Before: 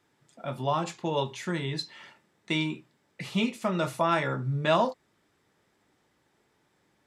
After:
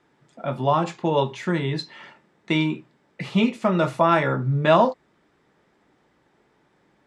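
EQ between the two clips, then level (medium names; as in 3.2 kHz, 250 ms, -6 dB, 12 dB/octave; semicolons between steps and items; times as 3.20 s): low-pass 9.9 kHz; peaking EQ 97 Hz -14.5 dB 0.24 oct; treble shelf 3.5 kHz -11.5 dB; +8.0 dB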